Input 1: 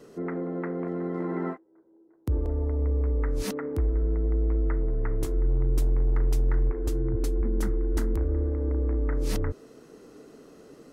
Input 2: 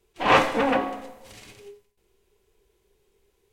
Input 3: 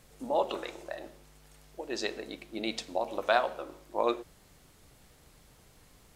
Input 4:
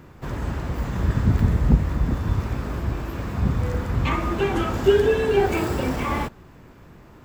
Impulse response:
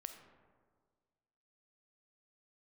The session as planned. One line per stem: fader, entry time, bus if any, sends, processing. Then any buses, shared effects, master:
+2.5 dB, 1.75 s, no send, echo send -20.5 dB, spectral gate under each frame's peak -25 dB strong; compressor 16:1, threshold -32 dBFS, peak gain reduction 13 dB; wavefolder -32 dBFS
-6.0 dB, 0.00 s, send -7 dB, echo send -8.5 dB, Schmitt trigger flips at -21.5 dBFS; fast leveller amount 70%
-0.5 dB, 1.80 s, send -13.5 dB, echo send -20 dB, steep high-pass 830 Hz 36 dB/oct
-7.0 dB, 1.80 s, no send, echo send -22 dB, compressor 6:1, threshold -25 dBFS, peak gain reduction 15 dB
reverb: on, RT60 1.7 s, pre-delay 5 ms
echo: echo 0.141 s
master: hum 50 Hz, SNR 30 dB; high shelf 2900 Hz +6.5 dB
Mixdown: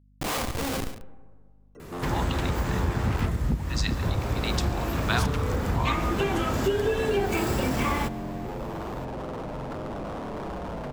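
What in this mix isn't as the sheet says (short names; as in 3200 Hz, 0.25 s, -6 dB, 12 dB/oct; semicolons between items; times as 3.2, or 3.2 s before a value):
stem 1: missing compressor 16:1, threshold -32 dBFS, peak gain reduction 13 dB; stem 2: send -7 dB -> -1 dB; stem 4 -7.0 dB -> +2.0 dB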